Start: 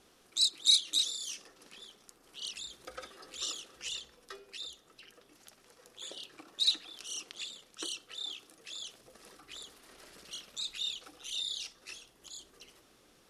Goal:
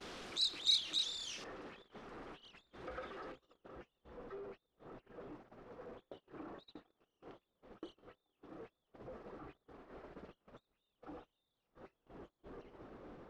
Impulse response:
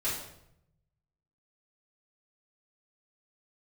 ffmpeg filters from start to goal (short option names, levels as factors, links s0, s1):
-af "aeval=exprs='val(0)+0.5*0.015*sgn(val(0))':c=same,asetnsamples=n=441:p=0,asendcmd='1.44 lowpass f 1700;3.32 lowpass f 1000',lowpass=4300,agate=range=0.0447:threshold=0.00501:ratio=16:detection=peak,volume=0.531"